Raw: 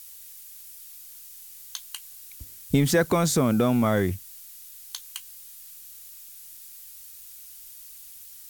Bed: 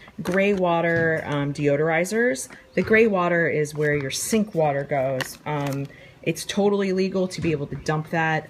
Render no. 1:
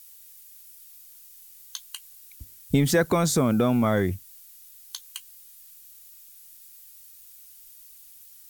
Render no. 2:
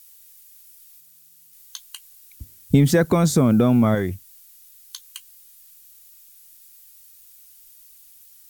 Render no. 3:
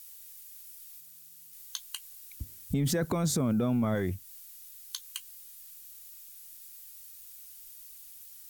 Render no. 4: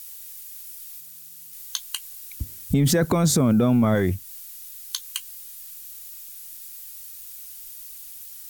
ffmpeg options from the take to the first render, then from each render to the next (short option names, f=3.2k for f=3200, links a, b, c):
-af "afftdn=nr=6:nf=-45"
-filter_complex "[0:a]asettb=1/sr,asplit=3[a][b][c];[a]atrim=end=1.004[d];[b]atrim=start=1:end=1.53,asetpts=PTS-STARTPTS,afade=t=in:d=0.004:c=qsin,afade=t=out:st=0.526:d=0.004:c=qsin,aeval=exprs='val(0)*sin(2*PI*160*n/s)':c=same[e];[c]atrim=start=1.526[f];[d][e]acrossfade=d=0.004:c1=hsin:c2=qsin[g];[g][f]acrossfade=d=0.004:c1=qsin:c2=hsin,asettb=1/sr,asplit=3[h][i][j];[h]atrim=end=2.364[k];[i]atrim=start=2.36:end=3.95,asetpts=PTS-STARTPTS,afade=t=in:d=0.004:c=qsin,afade=t=out:st=1.586:d=0.004:c=qsin,equalizer=f=140:w=0.36:g=7[l];[j]atrim=start=3.946[m];[k][l]acrossfade=d=0.004:c1=hsin:c2=qsin[n];[n][m]acrossfade=d=0.004:c1=qsin:c2=hsin,asettb=1/sr,asplit=3[o][p][q];[o]atrim=end=4.694[r];[p]atrim=start=4.69:end=5.18,asetpts=PTS-STARTPTS,afade=t=in:d=0.004:c=qsin,afade=t=out:st=0.486:d=0.004:c=qsin,asuperstop=centerf=780:order=12:qfactor=2.2[s];[q]atrim=start=5.176[t];[r][s]acrossfade=d=0.004:c1=hsin:c2=qsin[u];[u][t]acrossfade=d=0.004:c1=qsin:c2=hsin"
-af "alimiter=limit=-16dB:level=0:latency=1:release=10,acompressor=threshold=-34dB:ratio=1.5"
-af "volume=9dB"